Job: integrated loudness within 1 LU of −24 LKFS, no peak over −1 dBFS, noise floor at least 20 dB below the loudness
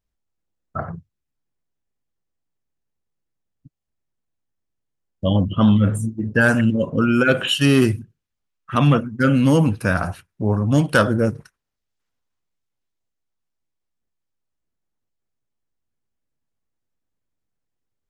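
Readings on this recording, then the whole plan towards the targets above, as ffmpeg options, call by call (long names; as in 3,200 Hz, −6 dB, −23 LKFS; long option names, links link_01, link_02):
integrated loudness −18.5 LKFS; sample peak −3.0 dBFS; target loudness −24.0 LKFS
→ -af "volume=-5.5dB"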